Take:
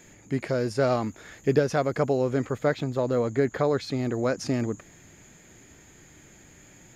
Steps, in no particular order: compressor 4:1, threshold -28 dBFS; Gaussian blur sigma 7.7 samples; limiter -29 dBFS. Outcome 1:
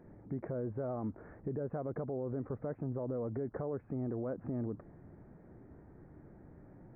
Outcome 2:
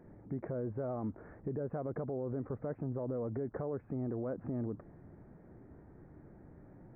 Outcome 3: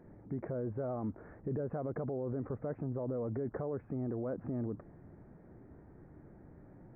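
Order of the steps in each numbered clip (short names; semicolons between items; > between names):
compressor > Gaussian blur > limiter; Gaussian blur > compressor > limiter; Gaussian blur > limiter > compressor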